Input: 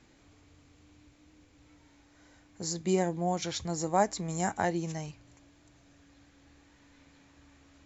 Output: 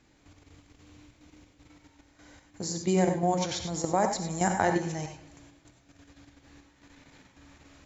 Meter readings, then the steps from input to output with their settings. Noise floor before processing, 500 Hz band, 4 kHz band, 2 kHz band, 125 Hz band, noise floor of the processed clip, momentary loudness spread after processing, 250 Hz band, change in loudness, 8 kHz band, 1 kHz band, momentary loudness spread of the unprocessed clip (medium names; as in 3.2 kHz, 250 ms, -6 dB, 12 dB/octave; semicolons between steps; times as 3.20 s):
-62 dBFS, +3.0 dB, +2.5 dB, +4.0 dB, +3.0 dB, -63 dBFS, 10 LU, +3.5 dB, +3.0 dB, no reading, +3.0 dB, 10 LU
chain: level held to a coarse grid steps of 10 dB; bucket-brigade echo 114 ms, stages 4096, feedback 48%, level -16 dB; gated-style reverb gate 120 ms rising, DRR 5.5 dB; trim +6 dB